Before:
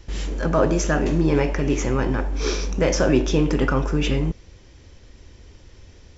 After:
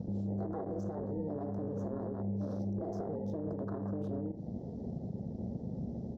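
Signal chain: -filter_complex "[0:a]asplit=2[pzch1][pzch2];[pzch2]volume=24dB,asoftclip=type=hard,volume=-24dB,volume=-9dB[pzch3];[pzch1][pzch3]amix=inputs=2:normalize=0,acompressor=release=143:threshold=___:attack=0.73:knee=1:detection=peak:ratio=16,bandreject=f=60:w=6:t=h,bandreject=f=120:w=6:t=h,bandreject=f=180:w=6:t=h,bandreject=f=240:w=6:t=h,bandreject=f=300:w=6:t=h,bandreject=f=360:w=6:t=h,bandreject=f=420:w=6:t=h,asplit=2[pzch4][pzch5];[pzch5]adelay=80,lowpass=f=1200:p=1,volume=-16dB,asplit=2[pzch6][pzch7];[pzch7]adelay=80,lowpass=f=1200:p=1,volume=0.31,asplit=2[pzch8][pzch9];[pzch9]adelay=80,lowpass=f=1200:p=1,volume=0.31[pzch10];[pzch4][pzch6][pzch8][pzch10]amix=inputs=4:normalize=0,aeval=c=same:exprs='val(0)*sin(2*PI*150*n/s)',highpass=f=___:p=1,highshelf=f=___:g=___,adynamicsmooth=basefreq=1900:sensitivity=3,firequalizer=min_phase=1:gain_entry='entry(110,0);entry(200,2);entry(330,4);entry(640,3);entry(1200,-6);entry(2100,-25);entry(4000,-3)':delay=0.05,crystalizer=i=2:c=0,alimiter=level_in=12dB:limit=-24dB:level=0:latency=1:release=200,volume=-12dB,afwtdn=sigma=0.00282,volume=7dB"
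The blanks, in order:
-30dB, 80, 5000, 8.5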